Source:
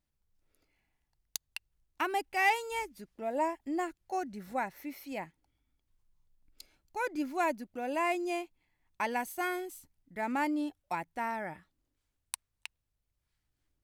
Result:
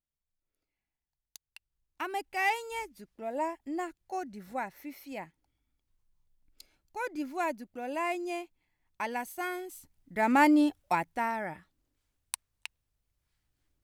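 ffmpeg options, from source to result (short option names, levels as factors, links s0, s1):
-af "volume=3.16,afade=t=in:st=1.48:d=0.8:silence=0.266073,afade=t=in:st=9.64:d=0.9:silence=0.266073,afade=t=out:st=10.54:d=0.79:silence=0.421697"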